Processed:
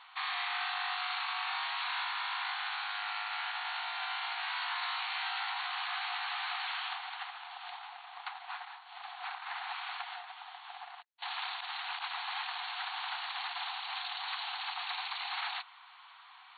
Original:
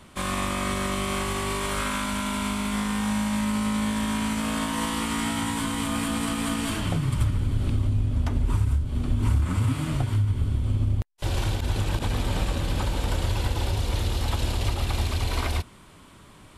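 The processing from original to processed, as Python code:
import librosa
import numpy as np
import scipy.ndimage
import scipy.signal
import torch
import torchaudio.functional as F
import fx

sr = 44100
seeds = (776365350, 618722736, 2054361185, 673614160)

y = 10.0 ** (-28.0 / 20.0) * (np.abs((x / 10.0 ** (-28.0 / 20.0) + 3.0) % 4.0 - 2.0) - 1.0)
y = fx.brickwall_bandpass(y, sr, low_hz=700.0, high_hz=4500.0)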